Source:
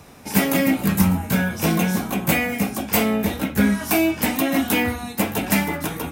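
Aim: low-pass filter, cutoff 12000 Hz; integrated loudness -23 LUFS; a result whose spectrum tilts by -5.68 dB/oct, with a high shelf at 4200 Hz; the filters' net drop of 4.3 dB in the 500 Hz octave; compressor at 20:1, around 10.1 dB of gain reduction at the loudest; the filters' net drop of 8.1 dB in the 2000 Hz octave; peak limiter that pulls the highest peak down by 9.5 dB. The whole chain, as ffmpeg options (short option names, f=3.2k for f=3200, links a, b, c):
-af "lowpass=12k,equalizer=f=500:t=o:g=-5,equalizer=f=2k:t=o:g=-8,highshelf=f=4.2k:g=-7.5,acompressor=threshold=-25dB:ratio=20,volume=9.5dB,alimiter=limit=-14dB:level=0:latency=1"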